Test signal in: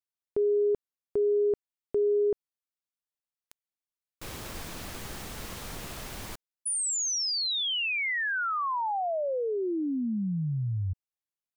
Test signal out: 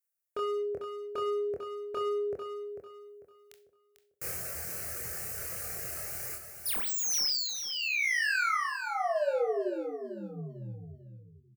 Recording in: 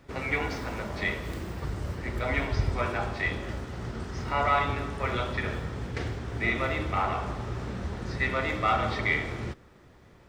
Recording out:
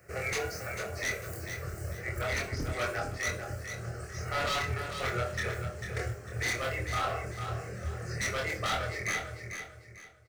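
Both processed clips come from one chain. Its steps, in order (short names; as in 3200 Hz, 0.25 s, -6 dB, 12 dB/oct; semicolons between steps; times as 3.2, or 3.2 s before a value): ending faded out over 1.76 s; reverb removal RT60 1.7 s; HPF 68 Hz 24 dB/oct; high shelf 5900 Hz +11.5 dB; fixed phaser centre 950 Hz, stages 6; wavefolder -28 dBFS; doubler 25 ms -3 dB; feedback echo 0.446 s, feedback 31%, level -8 dB; Schroeder reverb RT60 0.32 s, combs from 29 ms, DRR 11 dB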